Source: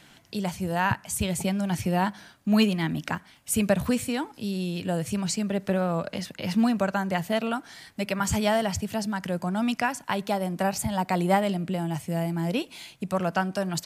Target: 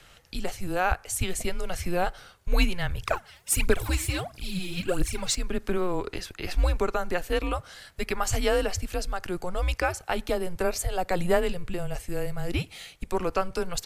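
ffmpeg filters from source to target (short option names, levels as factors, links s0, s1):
-filter_complex "[0:a]asettb=1/sr,asplit=3[s0][s1][s2];[s0]atrim=end=3.024[s3];[s1]atrim=start=3.02:end=5.35,asetpts=PTS-STARTPTS,afade=t=in:d=0.004:c=qsin,afade=t=out:st=2.326:d=0.004:c=qsin,aphaser=in_gain=1:out_gain=1:delay=4.2:decay=0.74:speed=1.5:type=triangular[s4];[s2]atrim=start=5.346[s5];[s3][s4]acrossfade=d=0.004:c1=hsin:c2=qsin[s6];[s6][s5]acrossfade=d=0.004:c1=qsin:c2=hsin,afreqshift=-180"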